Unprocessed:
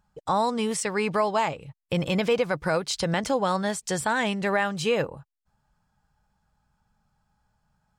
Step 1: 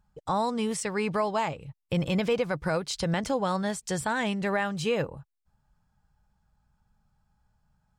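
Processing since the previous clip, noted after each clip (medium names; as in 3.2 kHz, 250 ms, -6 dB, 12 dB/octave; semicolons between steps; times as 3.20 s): bass shelf 160 Hz +8 dB; trim -4 dB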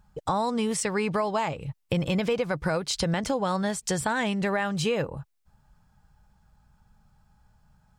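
compression 2.5:1, threshold -35 dBFS, peak gain reduction 9.5 dB; trim +8.5 dB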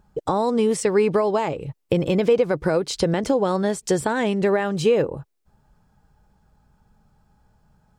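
peaking EQ 380 Hz +12 dB 1.3 oct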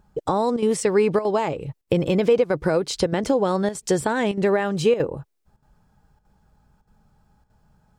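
square tremolo 1.6 Hz, depth 65%, duty 90%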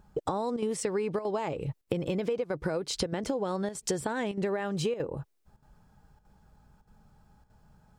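compression 6:1, threshold -28 dBFS, peak gain reduction 14 dB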